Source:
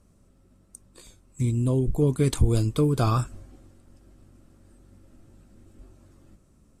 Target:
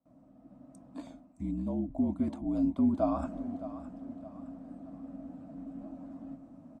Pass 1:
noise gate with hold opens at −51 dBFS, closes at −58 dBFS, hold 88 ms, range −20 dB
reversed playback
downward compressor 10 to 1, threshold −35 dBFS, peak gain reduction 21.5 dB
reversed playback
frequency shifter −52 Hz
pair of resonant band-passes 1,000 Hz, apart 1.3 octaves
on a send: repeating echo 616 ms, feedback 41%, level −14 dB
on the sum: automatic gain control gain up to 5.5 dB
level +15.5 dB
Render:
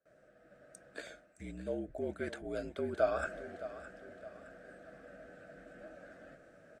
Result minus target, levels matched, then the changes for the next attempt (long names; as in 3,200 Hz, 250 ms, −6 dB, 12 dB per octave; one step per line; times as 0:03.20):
500 Hz band +7.5 dB
change: pair of resonant band-passes 420 Hz, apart 1.3 octaves